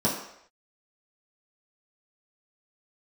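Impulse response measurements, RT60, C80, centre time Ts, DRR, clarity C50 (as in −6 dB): non-exponential decay, 7.5 dB, 38 ms, −7.5 dB, 5.5 dB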